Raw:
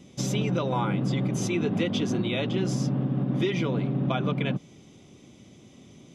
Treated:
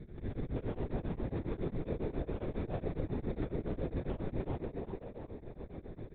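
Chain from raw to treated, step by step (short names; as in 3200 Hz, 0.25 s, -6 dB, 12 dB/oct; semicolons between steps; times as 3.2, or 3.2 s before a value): HPF 130 Hz 12 dB/oct; low shelf 220 Hz +9 dB; notches 60/120/180/240/300/360/420/480/540 Hz; compressor 8:1, threshold -36 dBFS, peak gain reduction 16.5 dB; rippled Chebyshev low-pass 810 Hz, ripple 3 dB; in parallel at -5.5 dB: sample-and-hold 23×; on the sum: tube stage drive 35 dB, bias 0.75; frequency-shifting echo 0.37 s, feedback 37%, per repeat +150 Hz, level -3 dB; LPC vocoder at 8 kHz whisper; beating tremolo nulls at 7.3 Hz; gain +5 dB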